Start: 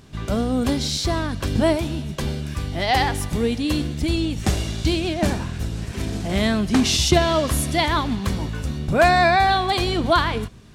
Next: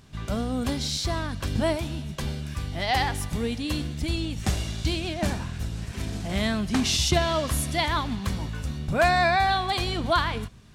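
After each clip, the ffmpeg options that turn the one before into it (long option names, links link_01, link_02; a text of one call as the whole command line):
ffmpeg -i in.wav -af "equalizer=frequency=370:width=1.1:gain=-5,volume=-4dB" out.wav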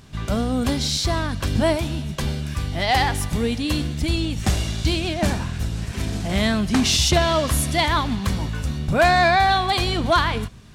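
ffmpeg -i in.wav -af "aeval=exprs='0.376*sin(PI/2*1.41*val(0)/0.376)':channel_layout=same,volume=-1dB" out.wav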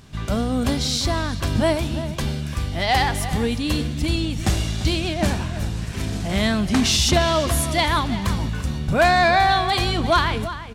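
ffmpeg -i in.wav -filter_complex "[0:a]asplit=2[link_01][link_02];[link_02]adelay=344,volume=-12dB,highshelf=frequency=4000:gain=-7.74[link_03];[link_01][link_03]amix=inputs=2:normalize=0" out.wav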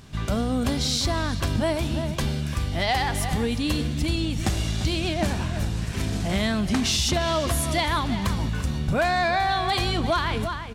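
ffmpeg -i in.wav -af "acompressor=threshold=-20dB:ratio=6" out.wav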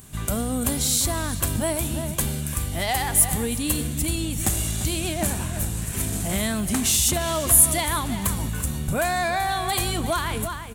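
ffmpeg -i in.wav -af "aexciter=amount=6.1:drive=7.7:freq=7300,volume=-1.5dB" out.wav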